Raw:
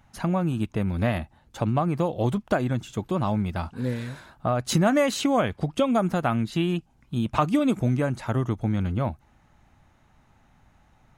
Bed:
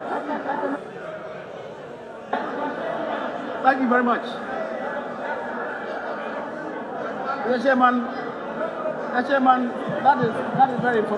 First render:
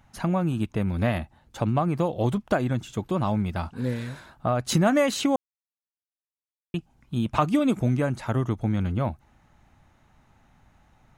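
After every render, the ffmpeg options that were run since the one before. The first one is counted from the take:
ffmpeg -i in.wav -filter_complex "[0:a]asplit=3[link_01][link_02][link_03];[link_01]atrim=end=5.36,asetpts=PTS-STARTPTS,afade=type=out:start_time=5.356:duration=0.004:curve=hsin[link_04];[link_02]atrim=start=5.36:end=6.74,asetpts=PTS-STARTPTS,volume=0[link_05];[link_03]atrim=start=6.74,asetpts=PTS-STARTPTS,afade=type=in:duration=0.004:curve=hsin[link_06];[link_04][link_05][link_06]concat=n=3:v=0:a=1" out.wav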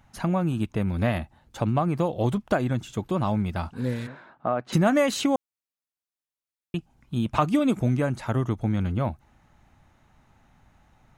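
ffmpeg -i in.wav -filter_complex "[0:a]asplit=3[link_01][link_02][link_03];[link_01]afade=type=out:start_time=4.06:duration=0.02[link_04];[link_02]highpass=220,lowpass=2100,afade=type=in:start_time=4.06:duration=0.02,afade=type=out:start_time=4.72:duration=0.02[link_05];[link_03]afade=type=in:start_time=4.72:duration=0.02[link_06];[link_04][link_05][link_06]amix=inputs=3:normalize=0" out.wav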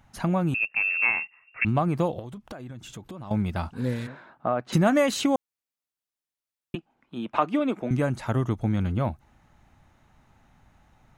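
ffmpeg -i in.wav -filter_complex "[0:a]asettb=1/sr,asplit=3[link_01][link_02][link_03];[link_01]atrim=end=0.544[link_04];[link_02]atrim=start=0.54:end=1.65,asetpts=PTS-STARTPTS,afade=type=in:duration=0.004:curve=qsin,afade=type=out:start_time=1.106:duration=0.004:curve=qsin,lowpass=frequency=2400:width_type=q:width=0.5098,lowpass=frequency=2400:width_type=q:width=0.6013,lowpass=frequency=2400:width_type=q:width=0.9,lowpass=frequency=2400:width_type=q:width=2.563,afreqshift=-2800[link_05];[link_03]atrim=start=1.646[link_06];[link_04][link_05]acrossfade=duration=0.004:curve1=hsin:curve2=qsin[link_07];[link_07][link_06]acrossfade=duration=0.004:curve1=qsin:curve2=hsin,asettb=1/sr,asplit=3[link_08][link_09][link_10];[link_08]atrim=end=2.194[link_11];[link_09]atrim=start=2.19:end=3.31,asetpts=PTS-STARTPTS,afade=type=in:duration=0.004:curve=qsin,afade=type=out:start_time=1.116:duration=0.004:curve=qsin,acompressor=threshold=-36dB:ratio=8:attack=3.2:release=140:knee=1:detection=peak[link_12];[link_10]atrim=start=3.306[link_13];[link_11][link_12]acrossfade=duration=0.004:curve1=hsin:curve2=qsin[link_14];[link_14][link_13]acrossfade=duration=0.004:curve1=qsin:curve2=hsin,asettb=1/sr,asplit=3[link_15][link_16][link_17];[link_15]atrim=end=6.754[link_18];[link_16]atrim=start=6.75:end=7.91,asetpts=PTS-STARTPTS,afade=type=in:duration=0.004:curve=qsin,afade=type=out:start_time=1.156:duration=0.004:curve=qsin,acrossover=split=240 3500:gain=0.0631 1 0.158[link_19][link_20][link_21];[link_19][link_20][link_21]amix=inputs=3:normalize=0[link_22];[link_17]atrim=start=7.906[link_23];[link_18][link_22]acrossfade=duration=0.004:curve1=hsin:curve2=qsin[link_24];[link_24][link_23]acrossfade=duration=0.004:curve1=qsin:curve2=hsin" out.wav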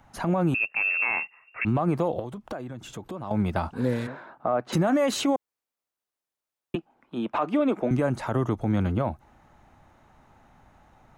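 ffmpeg -i in.wav -filter_complex "[0:a]acrossover=split=290|1400|5300[link_01][link_02][link_03][link_04];[link_02]acontrast=83[link_05];[link_01][link_05][link_03][link_04]amix=inputs=4:normalize=0,alimiter=limit=-15.5dB:level=0:latency=1:release=60" out.wav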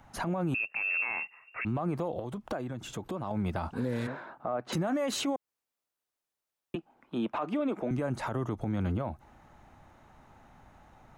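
ffmpeg -i in.wav -af "alimiter=limit=-23.5dB:level=0:latency=1:release=136" out.wav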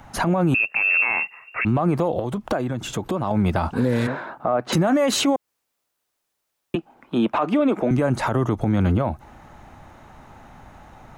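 ffmpeg -i in.wav -af "volume=11.5dB" out.wav

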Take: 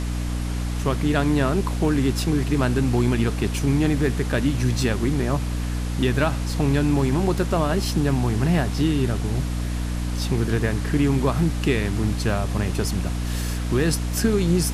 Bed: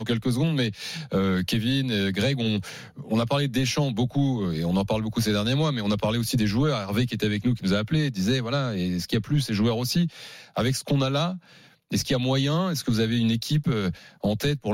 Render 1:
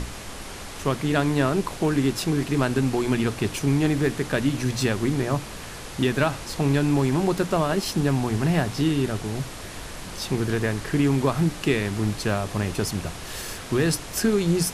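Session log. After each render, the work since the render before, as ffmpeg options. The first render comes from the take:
ffmpeg -i in.wav -af "bandreject=frequency=60:width_type=h:width=6,bandreject=frequency=120:width_type=h:width=6,bandreject=frequency=180:width_type=h:width=6,bandreject=frequency=240:width_type=h:width=6,bandreject=frequency=300:width_type=h:width=6" out.wav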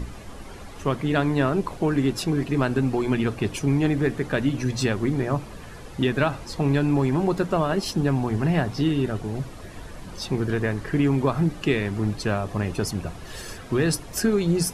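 ffmpeg -i in.wav -af "afftdn=noise_reduction=11:noise_floor=-37" out.wav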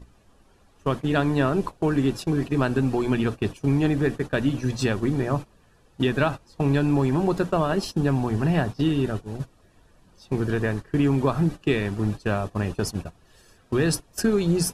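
ffmpeg -i in.wav -af "agate=range=-18dB:threshold=-27dB:ratio=16:detection=peak,bandreject=frequency=2100:width=8.8" out.wav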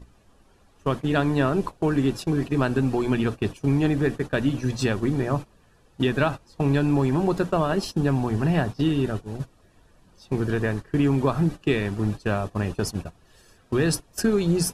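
ffmpeg -i in.wav -af anull out.wav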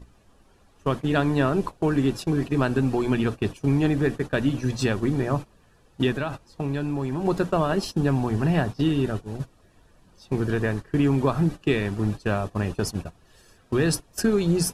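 ffmpeg -i in.wav -filter_complex "[0:a]asplit=3[link_01][link_02][link_03];[link_01]afade=type=out:start_time=6.12:duration=0.02[link_04];[link_02]acompressor=threshold=-26dB:ratio=2.5:attack=3.2:release=140:knee=1:detection=peak,afade=type=in:start_time=6.12:duration=0.02,afade=type=out:start_time=7.24:duration=0.02[link_05];[link_03]afade=type=in:start_time=7.24:duration=0.02[link_06];[link_04][link_05][link_06]amix=inputs=3:normalize=0" out.wav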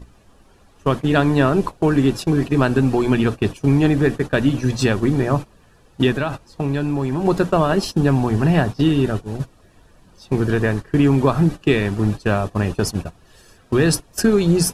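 ffmpeg -i in.wav -af "volume=6dB" out.wav

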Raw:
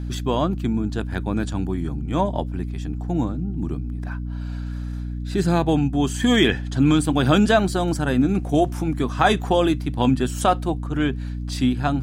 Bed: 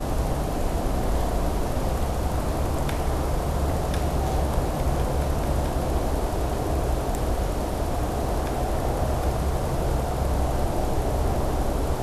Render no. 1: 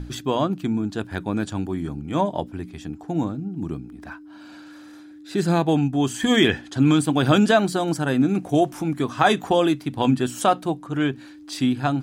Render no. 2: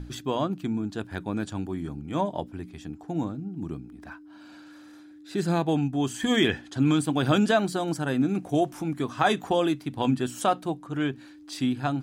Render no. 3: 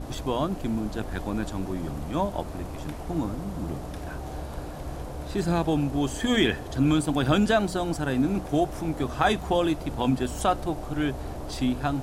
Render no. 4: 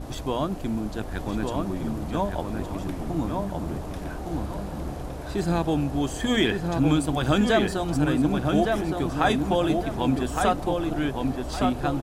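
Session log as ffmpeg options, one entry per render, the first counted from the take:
ffmpeg -i in.wav -af "bandreject=frequency=60:width_type=h:width=6,bandreject=frequency=120:width_type=h:width=6,bandreject=frequency=180:width_type=h:width=6,bandreject=frequency=240:width_type=h:width=6" out.wav
ffmpeg -i in.wav -af "volume=-5dB" out.wav
ffmpeg -i in.wav -i bed.wav -filter_complex "[1:a]volume=-11.5dB[link_01];[0:a][link_01]amix=inputs=2:normalize=0" out.wav
ffmpeg -i in.wav -filter_complex "[0:a]asplit=2[link_01][link_02];[link_02]adelay=1164,lowpass=frequency=2900:poles=1,volume=-3.5dB,asplit=2[link_03][link_04];[link_04]adelay=1164,lowpass=frequency=2900:poles=1,volume=0.34,asplit=2[link_05][link_06];[link_06]adelay=1164,lowpass=frequency=2900:poles=1,volume=0.34,asplit=2[link_07][link_08];[link_08]adelay=1164,lowpass=frequency=2900:poles=1,volume=0.34[link_09];[link_01][link_03][link_05][link_07][link_09]amix=inputs=5:normalize=0" out.wav

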